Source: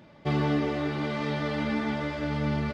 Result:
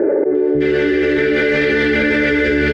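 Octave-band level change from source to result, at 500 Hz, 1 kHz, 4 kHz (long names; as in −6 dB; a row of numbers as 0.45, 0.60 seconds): +18.5, +2.0, +12.0 decibels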